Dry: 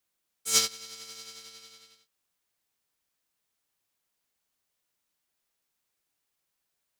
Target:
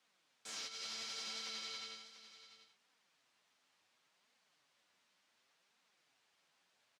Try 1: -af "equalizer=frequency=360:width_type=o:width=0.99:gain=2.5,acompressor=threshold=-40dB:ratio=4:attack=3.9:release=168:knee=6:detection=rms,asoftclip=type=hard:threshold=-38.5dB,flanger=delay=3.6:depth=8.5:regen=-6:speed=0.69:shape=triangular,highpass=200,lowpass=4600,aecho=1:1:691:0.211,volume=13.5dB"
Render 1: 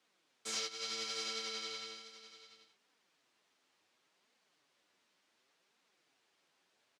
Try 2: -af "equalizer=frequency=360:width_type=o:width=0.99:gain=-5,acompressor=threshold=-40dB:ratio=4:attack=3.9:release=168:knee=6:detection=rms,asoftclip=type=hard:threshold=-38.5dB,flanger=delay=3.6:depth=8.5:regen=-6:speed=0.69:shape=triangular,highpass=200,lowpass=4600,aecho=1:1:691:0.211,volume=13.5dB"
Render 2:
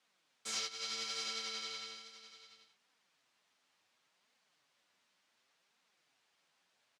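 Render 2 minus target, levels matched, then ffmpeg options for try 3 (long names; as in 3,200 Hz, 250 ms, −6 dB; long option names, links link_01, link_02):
hard clipping: distortion −9 dB
-af "equalizer=frequency=360:width_type=o:width=0.99:gain=-5,acompressor=threshold=-40dB:ratio=4:attack=3.9:release=168:knee=6:detection=rms,asoftclip=type=hard:threshold=-49dB,flanger=delay=3.6:depth=8.5:regen=-6:speed=0.69:shape=triangular,highpass=200,lowpass=4600,aecho=1:1:691:0.211,volume=13.5dB"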